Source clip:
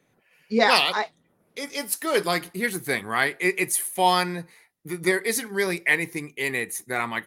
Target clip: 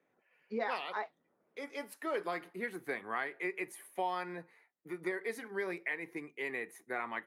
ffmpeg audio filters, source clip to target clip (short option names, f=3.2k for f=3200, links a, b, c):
-filter_complex "[0:a]acompressor=threshold=-23dB:ratio=6,acrossover=split=240 2500:gain=0.158 1 0.141[a][b][c];[a][b][c]amix=inputs=3:normalize=0,volume=-7.5dB"